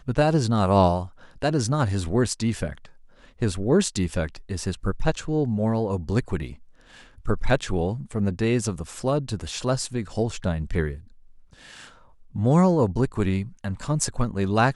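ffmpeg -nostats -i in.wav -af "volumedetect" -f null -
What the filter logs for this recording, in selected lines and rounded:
mean_volume: -24.3 dB
max_volume: -6.1 dB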